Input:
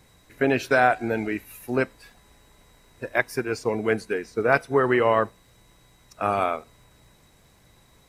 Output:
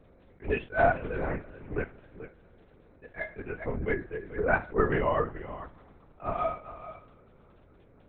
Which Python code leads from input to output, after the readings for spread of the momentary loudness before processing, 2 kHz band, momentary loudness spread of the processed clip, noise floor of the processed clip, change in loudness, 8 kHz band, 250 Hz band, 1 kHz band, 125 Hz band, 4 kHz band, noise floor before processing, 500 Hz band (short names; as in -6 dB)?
11 LU, -7.0 dB, 21 LU, -58 dBFS, -6.5 dB, under -35 dB, -8.5 dB, -6.5 dB, -2.0 dB, under -10 dB, -58 dBFS, -6.5 dB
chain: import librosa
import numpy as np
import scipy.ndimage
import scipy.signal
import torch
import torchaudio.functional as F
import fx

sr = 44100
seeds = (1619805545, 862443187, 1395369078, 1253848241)

y = fx.bin_expand(x, sr, power=1.5)
y = scipy.signal.sosfilt(scipy.signal.butter(2, 2200.0, 'lowpass', fs=sr, output='sos'), y)
y = fx.peak_eq(y, sr, hz=210.0, db=-3.5, octaves=2.6)
y = y + 10.0 ** (-13.5 / 20.0) * np.pad(y, (int(436 * sr / 1000.0), 0))[:len(y)]
y = fx.dmg_crackle(y, sr, seeds[0], per_s=29.0, level_db=-41.0)
y = fx.dmg_buzz(y, sr, base_hz=400.0, harmonics=6, level_db=-56.0, tilt_db=-9, odd_only=False)
y = fx.comb_fb(y, sr, f0_hz=210.0, decay_s=0.27, harmonics='all', damping=0.0, mix_pct=80)
y = fx.rev_plate(y, sr, seeds[1], rt60_s=3.2, hf_ratio=0.9, predelay_ms=0, drr_db=20.0)
y = fx.lpc_vocoder(y, sr, seeds[2], excitation='whisper', order=8)
y = fx.attack_slew(y, sr, db_per_s=270.0)
y = y * 10.0 ** (8.0 / 20.0)